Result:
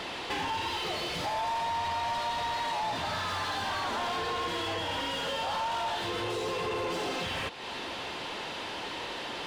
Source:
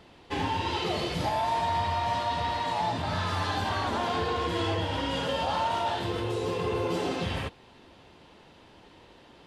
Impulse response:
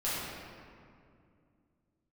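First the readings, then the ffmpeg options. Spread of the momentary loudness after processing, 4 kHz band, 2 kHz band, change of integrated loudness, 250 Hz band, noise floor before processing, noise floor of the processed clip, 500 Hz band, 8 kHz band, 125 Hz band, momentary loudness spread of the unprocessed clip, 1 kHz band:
5 LU, +1.0 dB, +1.0 dB, −3.0 dB, −6.5 dB, −55 dBFS, −38 dBFS, −4.0 dB, +2.5 dB, −10.5 dB, 3 LU, −2.5 dB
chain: -filter_complex "[0:a]highshelf=frequency=2800:gain=11.5,acompressor=threshold=-41dB:ratio=6,asplit=2[link_01][link_02];[link_02]highpass=frequency=720:poles=1,volume=19dB,asoftclip=type=tanh:threshold=-32.5dB[link_03];[link_01][link_03]amix=inputs=2:normalize=0,lowpass=frequency=2100:poles=1,volume=-6dB,volume=8dB"

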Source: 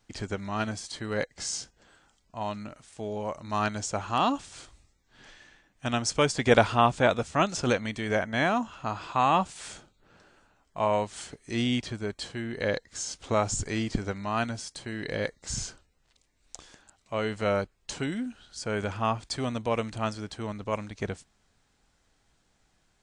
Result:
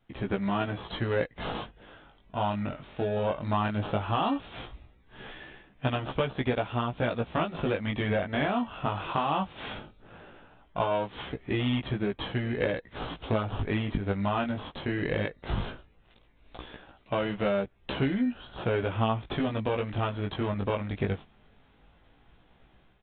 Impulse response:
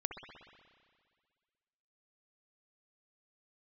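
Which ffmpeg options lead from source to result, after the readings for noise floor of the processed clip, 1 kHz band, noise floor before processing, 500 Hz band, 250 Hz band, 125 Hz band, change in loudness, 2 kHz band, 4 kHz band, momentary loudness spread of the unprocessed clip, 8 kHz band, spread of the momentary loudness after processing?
−61 dBFS, −3.0 dB, −70 dBFS, −1.0 dB, +1.0 dB, +3.0 dB, −1.5 dB, −3.0 dB, −3.0 dB, 13 LU, below −40 dB, 12 LU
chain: -filter_complex "[0:a]asplit=2[link_01][link_02];[link_02]acrusher=samples=21:mix=1:aa=0.000001,volume=-6.5dB[link_03];[link_01][link_03]amix=inputs=2:normalize=0,dynaudnorm=framelen=110:gausssize=5:maxgain=10dB,aresample=8000,aresample=44100,acompressor=threshold=-22dB:ratio=6,flanger=delay=15:depth=5.8:speed=0.17"

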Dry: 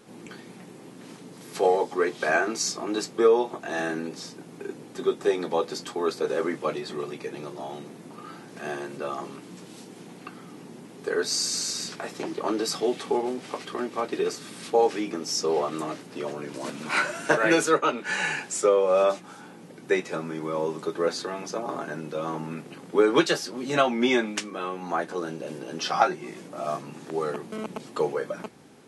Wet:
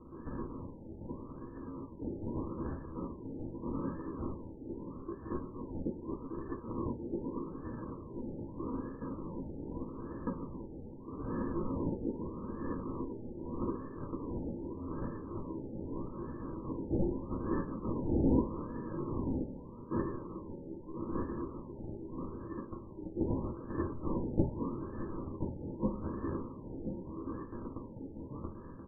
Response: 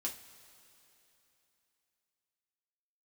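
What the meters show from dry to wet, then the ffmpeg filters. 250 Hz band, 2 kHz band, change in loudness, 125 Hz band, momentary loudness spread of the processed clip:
−4.5 dB, −28.5 dB, −12.5 dB, +2.5 dB, 10 LU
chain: -filter_complex "[0:a]equalizer=frequency=1600:width_type=o:width=0.3:gain=-13,areverse,acompressor=threshold=-37dB:ratio=6,areverse,highpass=frequency=450:width=0.5412,highpass=frequency=450:width=1.3066,equalizer=frequency=480:width_type=q:width=4:gain=-7,equalizer=frequency=690:width_type=q:width=4:gain=-7,equalizer=frequency=980:width_type=q:width=4:gain=-9,equalizer=frequency=1500:width_type=q:width=4:gain=9,equalizer=frequency=2300:width_type=q:width=4:gain=-6,lowpass=frequency=2700:width=0.5412,lowpass=frequency=2700:width=1.3066,aexciter=amount=15:drive=4.5:freq=2000,aresample=16000,acrusher=samples=22:mix=1:aa=0.000001,aresample=44100,aecho=1:1:1029:0.376[link_01];[1:a]atrim=start_sample=2205[link_02];[link_01][link_02]afir=irnorm=-1:irlink=0,afftfilt=real='re*lt(b*sr/1024,890*pow(1800/890,0.5+0.5*sin(2*PI*0.81*pts/sr)))':imag='im*lt(b*sr/1024,890*pow(1800/890,0.5+0.5*sin(2*PI*0.81*pts/sr)))':win_size=1024:overlap=0.75"

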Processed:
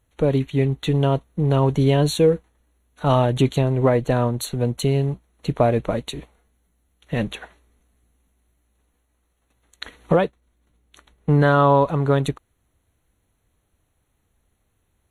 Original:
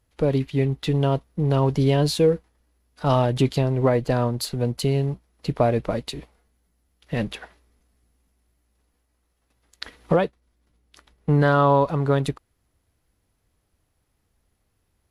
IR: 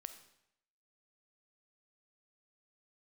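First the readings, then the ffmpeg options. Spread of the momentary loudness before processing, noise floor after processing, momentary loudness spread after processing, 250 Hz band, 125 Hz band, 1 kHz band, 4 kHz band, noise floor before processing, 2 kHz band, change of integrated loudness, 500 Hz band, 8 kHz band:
13 LU, −70 dBFS, 13 LU, +2.0 dB, +2.0 dB, +2.0 dB, +0.5 dB, −72 dBFS, +2.0 dB, +2.0 dB, +2.0 dB, +2.0 dB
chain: -af "asuperstop=centerf=5000:order=12:qfactor=3.5,volume=2dB"

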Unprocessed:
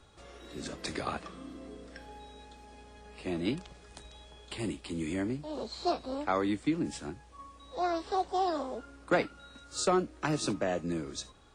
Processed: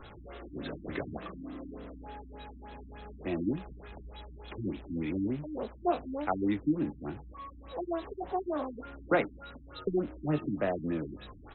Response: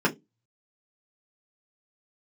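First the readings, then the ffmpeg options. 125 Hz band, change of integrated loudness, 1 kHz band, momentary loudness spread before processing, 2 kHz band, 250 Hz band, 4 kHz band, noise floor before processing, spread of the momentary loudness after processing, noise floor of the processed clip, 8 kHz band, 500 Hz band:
+1.5 dB, −1.0 dB, −3.5 dB, 21 LU, −2.0 dB, +1.0 dB, −10.0 dB, −56 dBFS, 17 LU, −51 dBFS, below −35 dB, −0.5 dB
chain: -filter_complex "[0:a]aeval=exprs='val(0)+0.5*0.00562*sgn(val(0))':channel_layout=same,asplit=2[link_01][link_02];[link_02]adelay=20,volume=-11dB[link_03];[link_01][link_03]amix=inputs=2:normalize=0,afftfilt=real='re*lt(b*sr/1024,310*pow(4200/310,0.5+0.5*sin(2*PI*3.4*pts/sr)))':imag='im*lt(b*sr/1024,310*pow(4200/310,0.5+0.5*sin(2*PI*3.4*pts/sr)))':win_size=1024:overlap=0.75"

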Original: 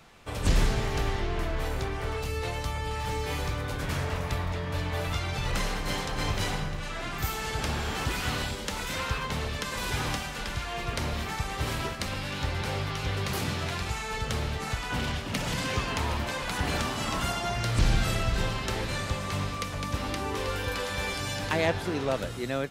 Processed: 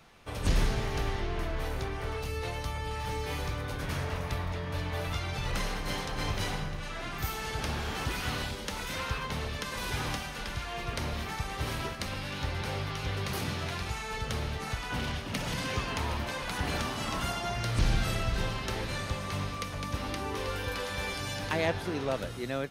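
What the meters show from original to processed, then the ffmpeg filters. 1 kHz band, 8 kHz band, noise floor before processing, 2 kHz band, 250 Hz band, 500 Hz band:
−3.0 dB, −4.0 dB, −35 dBFS, −3.0 dB, −3.0 dB, −3.0 dB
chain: -af "bandreject=frequency=7500:width=8.9,volume=-3dB"

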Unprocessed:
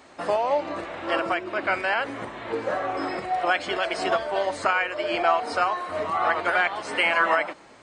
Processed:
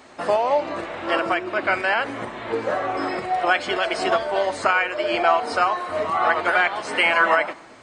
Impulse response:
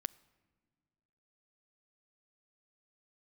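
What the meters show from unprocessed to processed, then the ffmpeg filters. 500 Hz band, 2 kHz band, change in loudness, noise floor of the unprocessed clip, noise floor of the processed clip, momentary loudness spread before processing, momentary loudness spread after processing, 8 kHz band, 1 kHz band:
+3.5 dB, +3.5 dB, +3.5 dB, −50 dBFS, −44 dBFS, 7 LU, 7 LU, +3.5 dB, +3.0 dB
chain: -filter_complex "[1:a]atrim=start_sample=2205[link_01];[0:a][link_01]afir=irnorm=-1:irlink=0,volume=5dB"

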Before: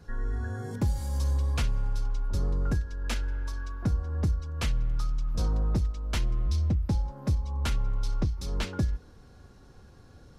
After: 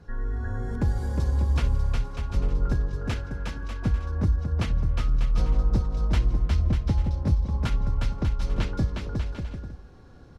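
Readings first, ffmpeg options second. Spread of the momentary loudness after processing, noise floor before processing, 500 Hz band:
8 LU, −53 dBFS, +3.5 dB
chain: -filter_complex "[0:a]lowpass=frequency=2800:poles=1,asplit=2[link_01][link_02];[link_02]aecho=0:1:360|594|746.1|845|909.2:0.631|0.398|0.251|0.158|0.1[link_03];[link_01][link_03]amix=inputs=2:normalize=0,volume=1.5dB"

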